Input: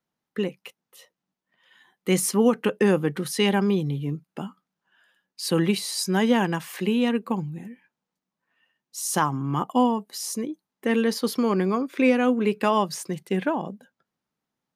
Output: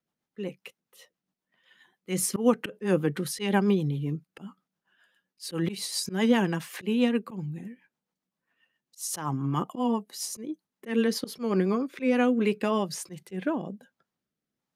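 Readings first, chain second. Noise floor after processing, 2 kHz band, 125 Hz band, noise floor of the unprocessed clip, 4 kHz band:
under -85 dBFS, -5.0 dB, -3.0 dB, under -85 dBFS, -5.0 dB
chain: rotary cabinet horn 7.5 Hz, later 1.2 Hz, at 11.72 s; slow attack 136 ms

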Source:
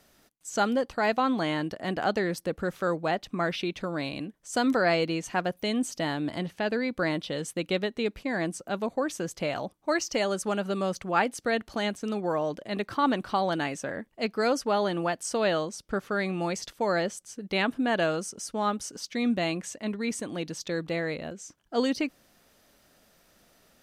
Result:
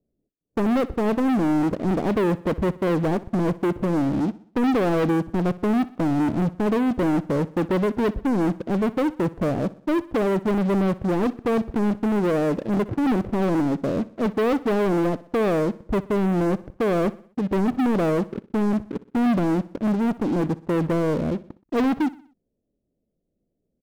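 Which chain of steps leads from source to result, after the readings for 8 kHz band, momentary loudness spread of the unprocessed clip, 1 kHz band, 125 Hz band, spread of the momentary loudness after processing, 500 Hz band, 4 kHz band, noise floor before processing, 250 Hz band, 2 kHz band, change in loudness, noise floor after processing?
no reading, 7 LU, +1.5 dB, +11.0 dB, 4 LU, +5.0 dB, -6.5 dB, -64 dBFS, +9.5 dB, -2.5 dB, +6.0 dB, -77 dBFS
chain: inverse Chebyshev low-pass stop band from 1.6 kHz, stop band 60 dB; waveshaping leveller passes 5; on a send: feedback delay 62 ms, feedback 47%, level -19 dB

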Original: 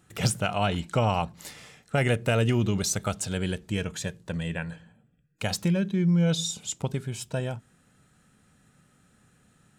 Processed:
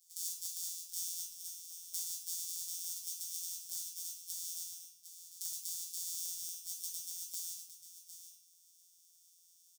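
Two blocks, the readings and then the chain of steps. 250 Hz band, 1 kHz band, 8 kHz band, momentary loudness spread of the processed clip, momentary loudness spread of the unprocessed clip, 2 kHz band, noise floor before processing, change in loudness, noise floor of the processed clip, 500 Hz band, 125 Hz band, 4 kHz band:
under -40 dB, under -40 dB, -3.0 dB, 13 LU, 12 LU, under -35 dB, -64 dBFS, -12.0 dB, -66 dBFS, under -40 dB, under -40 dB, -11.0 dB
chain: sorted samples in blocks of 256 samples; inverse Chebyshev high-pass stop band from 1.7 kHz, stop band 60 dB; compression 4:1, threshold -46 dBFS, peak gain reduction 13.5 dB; on a send: delay 755 ms -11 dB; on the sum: simulated room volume 91 m³, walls mixed, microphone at 1.3 m; trim +6 dB

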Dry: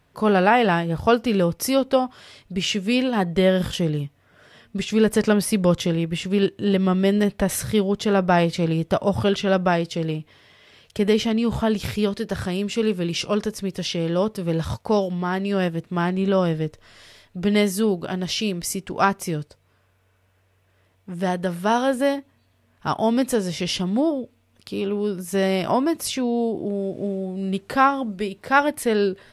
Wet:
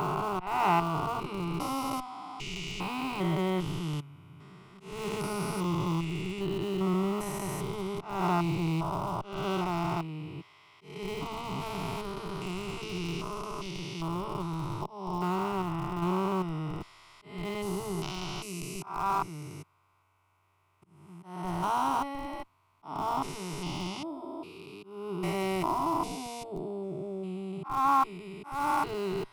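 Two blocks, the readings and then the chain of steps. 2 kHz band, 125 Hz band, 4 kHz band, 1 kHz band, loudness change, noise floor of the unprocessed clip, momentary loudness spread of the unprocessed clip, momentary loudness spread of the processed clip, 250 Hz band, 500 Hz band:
-13.0 dB, -8.5 dB, -12.0 dB, -5.0 dB, -10.5 dB, -63 dBFS, 9 LU, 13 LU, -12.5 dB, -14.0 dB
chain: spectrogram pixelated in time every 400 ms; high-order bell 1.5 kHz +13 dB; slow attack 272 ms; in parallel at -10.5 dB: Schmitt trigger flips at -19.5 dBFS; on the sum: static phaser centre 340 Hz, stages 8; trim -5.5 dB

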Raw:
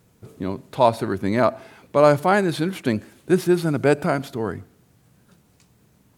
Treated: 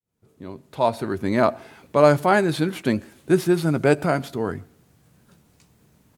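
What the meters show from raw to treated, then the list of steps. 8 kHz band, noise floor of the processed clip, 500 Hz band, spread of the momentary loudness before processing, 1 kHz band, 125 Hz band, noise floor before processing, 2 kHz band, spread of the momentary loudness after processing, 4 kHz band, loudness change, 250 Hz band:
0.0 dB, -61 dBFS, -0.5 dB, 13 LU, -1.0 dB, 0.0 dB, -59 dBFS, +0.5 dB, 12 LU, -0.5 dB, 0.0 dB, -0.5 dB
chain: fade-in on the opening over 1.40 s; doubling 13 ms -13 dB

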